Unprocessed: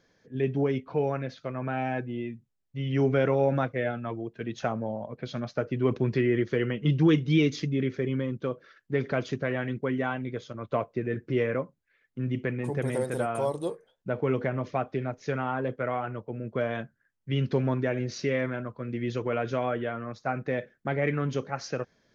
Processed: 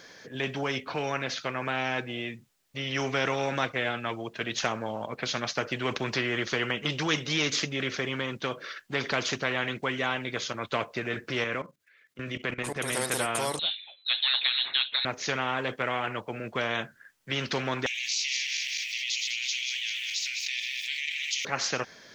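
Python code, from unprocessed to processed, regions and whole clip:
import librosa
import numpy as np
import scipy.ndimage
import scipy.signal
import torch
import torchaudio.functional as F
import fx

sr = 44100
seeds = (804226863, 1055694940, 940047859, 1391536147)

y = fx.chain(x, sr, fx.highpass(hz=63.0, slope=12),
    fx.peak_eq(hz=830.0, db=-9.5, octaves=0.26),
    fx.level_steps(step_db=16), at=(11.44, 12.97))
y = fx.chain(y, sr, fx.air_absorb(metres=130.0),
    fx.freq_invert(carrier_hz=4000), at=(13.59, 15.05))
y = fx.chain(y, sr, fx.reverse_delay_fb(ms=102, feedback_pct=64, wet_db=-9),
    fx.steep_highpass(hz=2400.0, slope=72),
    fx.env_flatten(amount_pct=70), at=(17.86, 21.45))
y = fx.lowpass(y, sr, hz=3500.0, slope=6)
y = fx.tilt_eq(y, sr, slope=3.5)
y = fx.spectral_comp(y, sr, ratio=2.0)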